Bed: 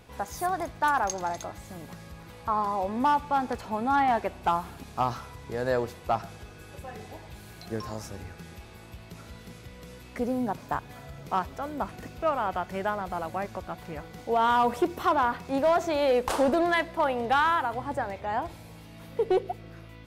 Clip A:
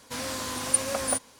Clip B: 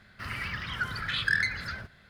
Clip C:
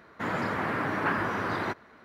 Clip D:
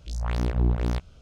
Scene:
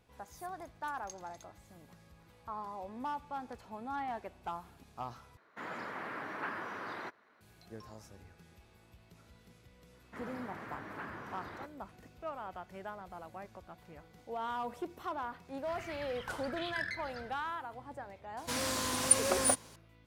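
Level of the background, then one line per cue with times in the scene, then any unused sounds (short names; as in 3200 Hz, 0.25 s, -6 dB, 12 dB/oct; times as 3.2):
bed -15 dB
5.37 replace with C -10.5 dB + HPF 400 Hz 6 dB/oct
9.93 add C -16.5 dB
15.48 add B -12.5 dB
18.37 add A -1.5 dB
not used: D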